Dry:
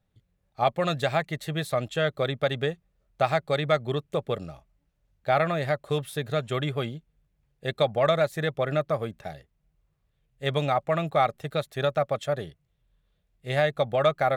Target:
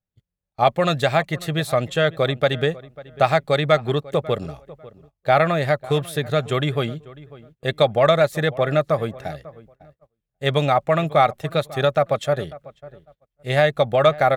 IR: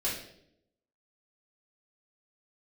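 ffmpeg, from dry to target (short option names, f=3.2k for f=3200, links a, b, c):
-filter_complex "[0:a]asplit=2[a][b];[b]adelay=546,lowpass=f=1.7k:p=1,volume=-19dB,asplit=2[c][d];[d]adelay=546,lowpass=f=1.7k:p=1,volume=0.25[e];[a][c][e]amix=inputs=3:normalize=0,agate=range=-21dB:threshold=-55dB:ratio=16:detection=peak,volume=6.5dB"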